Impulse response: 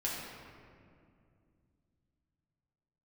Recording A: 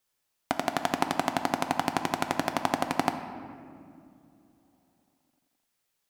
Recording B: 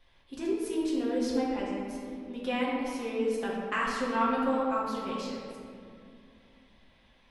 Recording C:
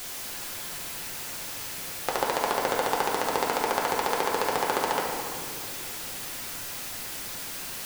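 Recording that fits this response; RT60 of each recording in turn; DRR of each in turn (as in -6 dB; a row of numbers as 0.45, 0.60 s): B; not exponential, 2.4 s, 2.4 s; 6.5, -6.5, -2.0 dB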